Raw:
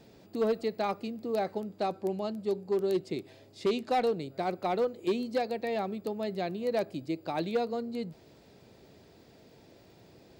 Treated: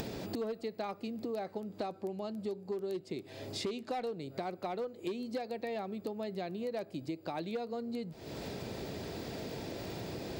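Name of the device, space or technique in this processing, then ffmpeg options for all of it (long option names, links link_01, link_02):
upward and downward compression: -af "acompressor=mode=upward:threshold=-35dB:ratio=2.5,acompressor=threshold=-42dB:ratio=6,volume=6dB"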